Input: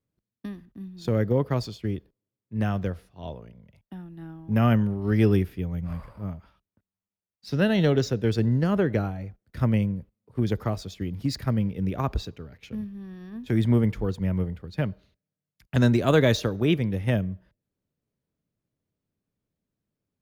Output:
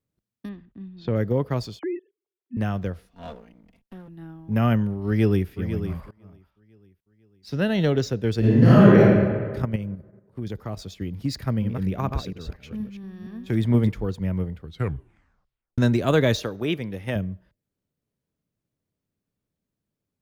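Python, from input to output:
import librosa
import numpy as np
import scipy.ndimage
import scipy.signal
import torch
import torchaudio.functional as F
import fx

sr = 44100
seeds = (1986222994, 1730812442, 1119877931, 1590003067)

y = fx.lowpass(x, sr, hz=4000.0, slope=24, at=(0.49, 1.16))
y = fx.sine_speech(y, sr, at=(1.79, 2.57))
y = fx.lower_of_two(y, sr, delay_ms=4.3, at=(3.07, 4.08))
y = fx.echo_throw(y, sr, start_s=5.06, length_s=0.44, ms=500, feedback_pct=35, wet_db=-9.5)
y = fx.reverb_throw(y, sr, start_s=8.39, length_s=0.6, rt60_s=1.7, drr_db=-10.0)
y = fx.level_steps(y, sr, step_db=10, at=(9.62, 10.79))
y = fx.reverse_delay(y, sr, ms=235, wet_db=-6, at=(11.39, 13.89))
y = fx.low_shelf(y, sr, hz=210.0, db=-10.0, at=(16.43, 17.16))
y = fx.edit(y, sr, fx.fade_in_from(start_s=6.11, length_s=1.75, floor_db=-24.0),
    fx.tape_stop(start_s=14.6, length_s=1.18), tone=tone)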